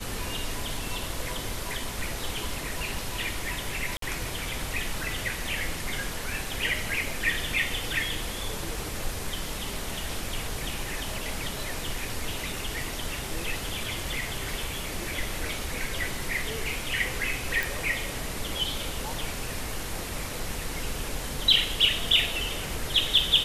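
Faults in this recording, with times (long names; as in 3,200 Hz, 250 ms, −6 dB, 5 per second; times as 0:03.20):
0:03.97–0:04.02: drop-out 53 ms
0:17.63: click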